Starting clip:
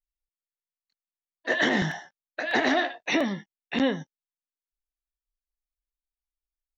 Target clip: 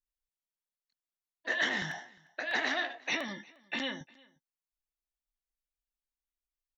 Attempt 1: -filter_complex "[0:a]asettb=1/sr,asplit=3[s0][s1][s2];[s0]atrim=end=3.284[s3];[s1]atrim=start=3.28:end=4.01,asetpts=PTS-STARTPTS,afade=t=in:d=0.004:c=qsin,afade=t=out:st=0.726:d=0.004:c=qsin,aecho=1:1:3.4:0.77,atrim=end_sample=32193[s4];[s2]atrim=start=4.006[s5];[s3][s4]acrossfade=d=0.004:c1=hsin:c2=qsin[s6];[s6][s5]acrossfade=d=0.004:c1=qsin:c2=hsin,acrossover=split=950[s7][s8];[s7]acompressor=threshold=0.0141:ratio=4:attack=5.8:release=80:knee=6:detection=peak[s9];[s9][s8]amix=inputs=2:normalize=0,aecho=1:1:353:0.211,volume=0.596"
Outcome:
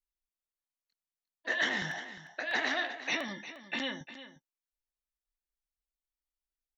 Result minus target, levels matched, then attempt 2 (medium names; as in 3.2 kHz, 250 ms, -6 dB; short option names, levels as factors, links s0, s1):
echo-to-direct +12 dB
-filter_complex "[0:a]asettb=1/sr,asplit=3[s0][s1][s2];[s0]atrim=end=3.284[s3];[s1]atrim=start=3.28:end=4.01,asetpts=PTS-STARTPTS,afade=t=in:d=0.004:c=qsin,afade=t=out:st=0.726:d=0.004:c=qsin,aecho=1:1:3.4:0.77,atrim=end_sample=32193[s4];[s2]atrim=start=4.006[s5];[s3][s4]acrossfade=d=0.004:c1=hsin:c2=qsin[s6];[s6][s5]acrossfade=d=0.004:c1=qsin:c2=hsin,acrossover=split=950[s7][s8];[s7]acompressor=threshold=0.0141:ratio=4:attack=5.8:release=80:knee=6:detection=peak[s9];[s9][s8]amix=inputs=2:normalize=0,aecho=1:1:353:0.0531,volume=0.596"